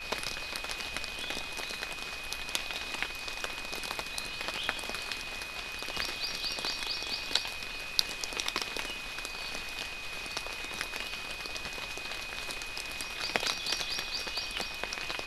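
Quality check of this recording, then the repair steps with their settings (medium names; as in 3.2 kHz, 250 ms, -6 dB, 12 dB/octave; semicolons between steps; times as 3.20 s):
whine 2.5 kHz -41 dBFS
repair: band-stop 2.5 kHz, Q 30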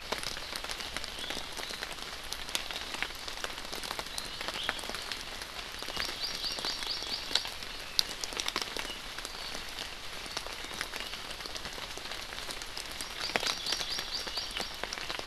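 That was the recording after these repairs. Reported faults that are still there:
nothing left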